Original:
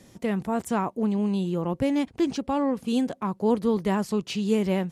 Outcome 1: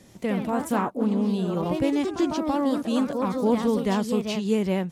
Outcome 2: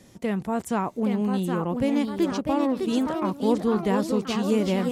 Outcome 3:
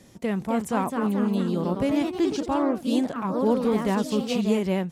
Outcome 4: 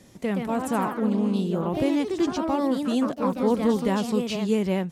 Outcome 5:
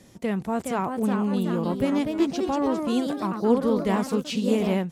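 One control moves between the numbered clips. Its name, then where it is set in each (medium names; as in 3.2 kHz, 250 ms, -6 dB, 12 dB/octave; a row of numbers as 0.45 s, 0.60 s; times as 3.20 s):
ever faster or slower copies, time: 91 ms, 847 ms, 288 ms, 148 ms, 444 ms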